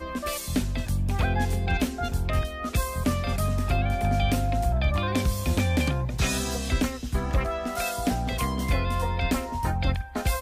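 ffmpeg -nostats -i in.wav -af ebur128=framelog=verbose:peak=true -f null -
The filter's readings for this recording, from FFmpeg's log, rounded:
Integrated loudness:
  I:         -27.0 LUFS
  Threshold: -37.0 LUFS
Loudness range:
  LRA:         1.9 LU
  Threshold: -46.8 LUFS
  LRA low:   -27.6 LUFS
  LRA high:  -25.7 LUFS
True peak:
  Peak:      -12.7 dBFS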